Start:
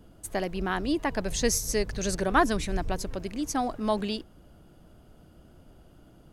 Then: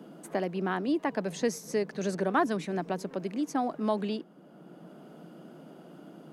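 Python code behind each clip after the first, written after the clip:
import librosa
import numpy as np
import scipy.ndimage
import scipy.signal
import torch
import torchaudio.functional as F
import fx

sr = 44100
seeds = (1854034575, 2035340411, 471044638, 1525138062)

y = scipy.signal.sosfilt(scipy.signal.ellip(4, 1.0, 40, 160.0, 'highpass', fs=sr, output='sos'), x)
y = fx.high_shelf(y, sr, hz=2900.0, db=-11.5)
y = fx.band_squash(y, sr, depth_pct=40)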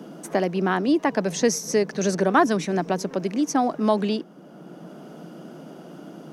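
y = fx.peak_eq(x, sr, hz=5800.0, db=9.0, octaves=0.33)
y = F.gain(torch.from_numpy(y), 8.0).numpy()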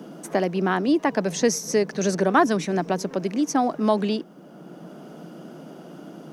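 y = fx.quant_dither(x, sr, seeds[0], bits=12, dither='none')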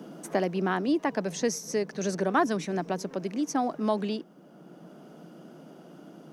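y = fx.rider(x, sr, range_db=10, speed_s=2.0)
y = F.gain(torch.from_numpy(y), -6.5).numpy()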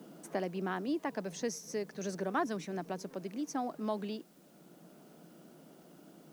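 y = fx.quant_dither(x, sr, seeds[1], bits=10, dither='triangular')
y = F.gain(torch.from_numpy(y), -8.5).numpy()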